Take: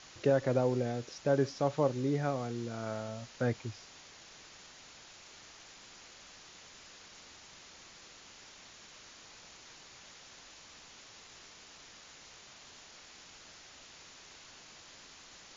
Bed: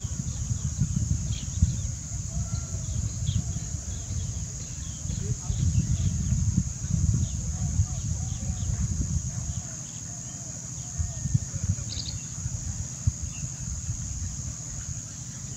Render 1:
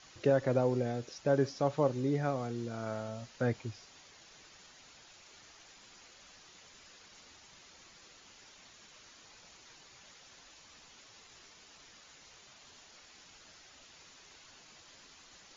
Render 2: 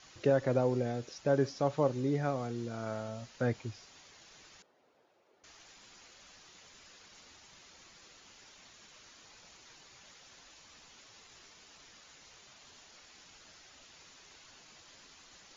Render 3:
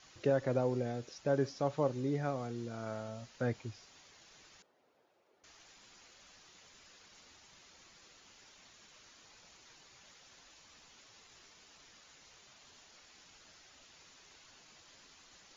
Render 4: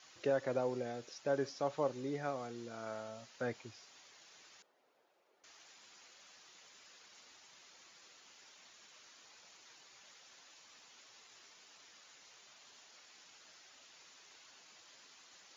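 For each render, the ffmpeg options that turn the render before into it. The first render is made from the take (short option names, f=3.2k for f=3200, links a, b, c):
-af "afftdn=nr=6:nf=-55"
-filter_complex "[0:a]asettb=1/sr,asplit=3[a][b][c];[a]atrim=end=4.624[d];[b]atrim=start=4.62:end=5.44,asetpts=PTS-STARTPTS,afade=t=in:d=0.004:c=qsin,afade=t=out:st=0.816:d=0.004:c=qsin,bandpass=f=470:t=q:w=1.6[e];[c]atrim=start=5.436[f];[d][e]acrossfade=d=0.004:c1=hsin:c2=qsin[g];[g][f]acrossfade=d=0.004:c1=qsin:c2=hsin"
-af "volume=-3dB"
-af "highpass=f=450:p=1"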